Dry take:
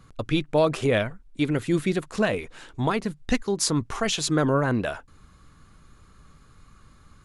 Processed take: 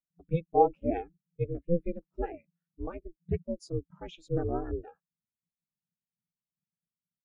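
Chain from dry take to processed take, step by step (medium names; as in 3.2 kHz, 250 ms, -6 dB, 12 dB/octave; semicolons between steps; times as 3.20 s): ring modulator 170 Hz; dynamic bell 2.4 kHz, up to +5 dB, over -44 dBFS, Q 3.4; spectral contrast expander 2.5:1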